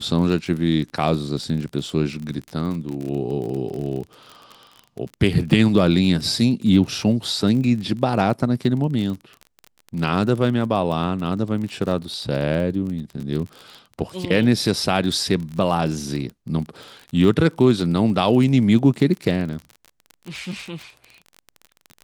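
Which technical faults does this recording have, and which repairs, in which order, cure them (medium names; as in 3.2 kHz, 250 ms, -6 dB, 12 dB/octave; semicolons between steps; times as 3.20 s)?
crackle 32 per s -28 dBFS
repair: de-click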